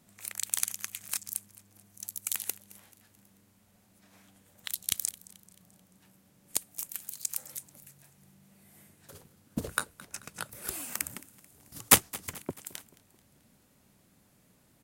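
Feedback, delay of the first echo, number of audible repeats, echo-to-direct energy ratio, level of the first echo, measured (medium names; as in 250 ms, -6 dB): 50%, 218 ms, 3, -20.0 dB, -21.0 dB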